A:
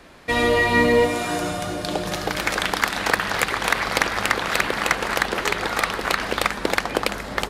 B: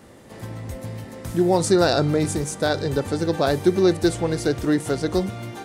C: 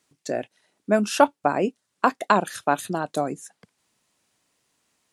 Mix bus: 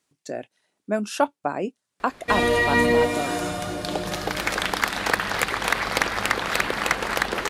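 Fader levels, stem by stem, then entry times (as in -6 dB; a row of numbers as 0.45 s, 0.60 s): -2.0 dB, mute, -4.5 dB; 2.00 s, mute, 0.00 s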